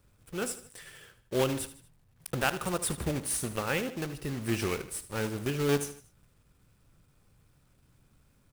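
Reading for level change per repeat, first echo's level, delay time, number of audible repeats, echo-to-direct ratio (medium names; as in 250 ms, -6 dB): -7.0 dB, -14.0 dB, 77 ms, 3, -13.0 dB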